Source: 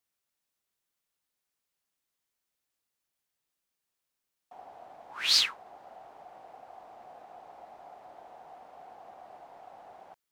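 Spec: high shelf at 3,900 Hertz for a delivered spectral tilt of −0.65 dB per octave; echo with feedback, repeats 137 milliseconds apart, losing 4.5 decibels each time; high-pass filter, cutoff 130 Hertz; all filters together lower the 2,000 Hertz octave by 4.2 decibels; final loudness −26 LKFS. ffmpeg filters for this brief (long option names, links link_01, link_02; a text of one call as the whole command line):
ffmpeg -i in.wav -af "highpass=130,equalizer=frequency=2000:width_type=o:gain=-4.5,highshelf=frequency=3900:gain=-3.5,aecho=1:1:137|274|411|548|685|822|959|1096|1233:0.596|0.357|0.214|0.129|0.0772|0.0463|0.0278|0.0167|0.01,volume=3dB" out.wav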